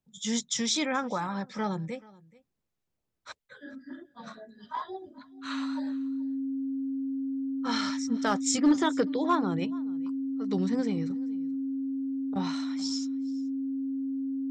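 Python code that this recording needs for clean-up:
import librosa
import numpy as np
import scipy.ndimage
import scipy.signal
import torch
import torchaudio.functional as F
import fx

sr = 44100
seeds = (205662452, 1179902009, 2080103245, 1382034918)

y = fx.fix_declip(x, sr, threshold_db=-15.5)
y = fx.notch(y, sr, hz=270.0, q=30.0)
y = fx.fix_echo_inverse(y, sr, delay_ms=430, level_db=-23.0)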